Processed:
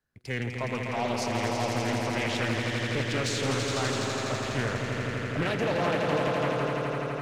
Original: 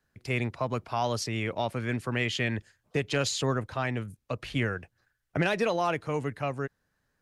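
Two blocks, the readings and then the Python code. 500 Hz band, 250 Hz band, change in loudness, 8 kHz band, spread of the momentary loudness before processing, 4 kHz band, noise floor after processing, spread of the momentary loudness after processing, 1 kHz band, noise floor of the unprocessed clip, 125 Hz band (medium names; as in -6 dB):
+2.5 dB, +2.0 dB, +2.0 dB, +2.5 dB, 9 LU, +2.5 dB, -35 dBFS, 5 LU, +2.0 dB, -78 dBFS, +1.5 dB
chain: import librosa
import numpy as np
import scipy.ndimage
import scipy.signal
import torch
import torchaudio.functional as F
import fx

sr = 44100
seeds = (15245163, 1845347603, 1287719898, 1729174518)

y = fx.leveller(x, sr, passes=1)
y = fx.echo_swell(y, sr, ms=83, loudest=5, wet_db=-6.0)
y = fx.doppler_dist(y, sr, depth_ms=0.51)
y = y * 10.0 ** (-5.5 / 20.0)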